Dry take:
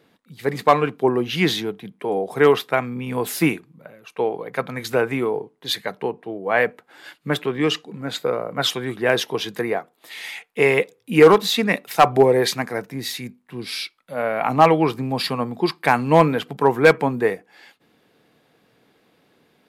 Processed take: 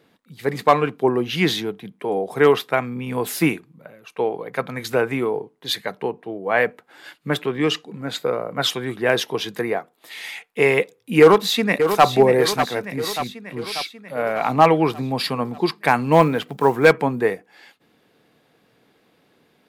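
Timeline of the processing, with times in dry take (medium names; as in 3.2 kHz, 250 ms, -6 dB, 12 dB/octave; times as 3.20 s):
11.20–12.05 s: echo throw 590 ms, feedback 60%, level -8.5 dB
16.12–16.92 s: block-companded coder 7-bit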